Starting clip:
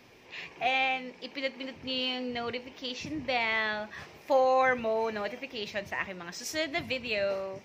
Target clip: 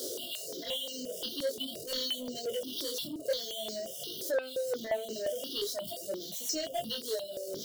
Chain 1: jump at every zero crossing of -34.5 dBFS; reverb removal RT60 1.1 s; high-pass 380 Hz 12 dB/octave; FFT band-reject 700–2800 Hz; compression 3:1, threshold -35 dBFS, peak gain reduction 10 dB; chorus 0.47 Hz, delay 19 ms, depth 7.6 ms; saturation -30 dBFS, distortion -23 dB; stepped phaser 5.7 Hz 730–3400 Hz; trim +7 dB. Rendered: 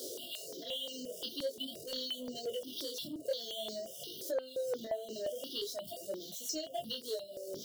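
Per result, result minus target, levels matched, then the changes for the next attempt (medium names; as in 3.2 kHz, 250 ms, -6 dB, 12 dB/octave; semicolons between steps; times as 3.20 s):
compression: peak gain reduction +10 dB; jump at every zero crossing: distortion -5 dB
remove: compression 3:1, threshold -35 dBFS, peak gain reduction 10 dB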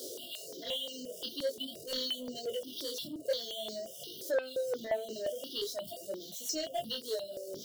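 jump at every zero crossing: distortion -5 dB
change: jump at every zero crossing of -28.5 dBFS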